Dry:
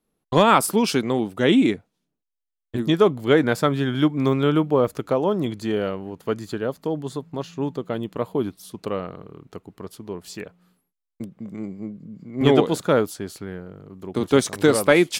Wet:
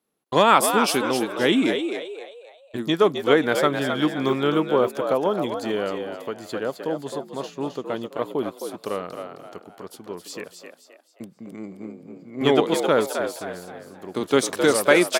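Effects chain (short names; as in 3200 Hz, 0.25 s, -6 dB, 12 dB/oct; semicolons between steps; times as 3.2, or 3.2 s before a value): HPF 380 Hz 6 dB/oct; frequency-shifting echo 0.263 s, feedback 37%, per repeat +71 Hz, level -7 dB; 6.03–6.45 compressor 2.5:1, threshold -29 dBFS, peak gain reduction 6 dB; gain +1 dB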